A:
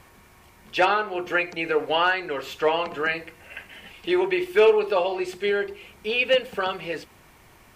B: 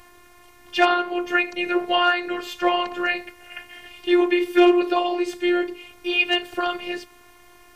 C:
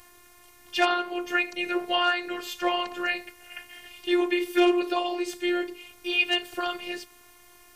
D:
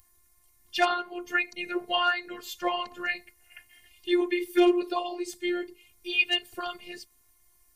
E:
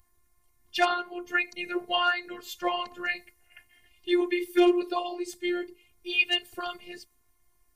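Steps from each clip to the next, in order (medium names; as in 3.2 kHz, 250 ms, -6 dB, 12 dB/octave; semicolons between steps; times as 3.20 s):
robot voice 352 Hz; trim +4.5 dB
treble shelf 4.1 kHz +10 dB; trim -6 dB
expander on every frequency bin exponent 1.5; trim +1 dB
tape noise reduction on one side only decoder only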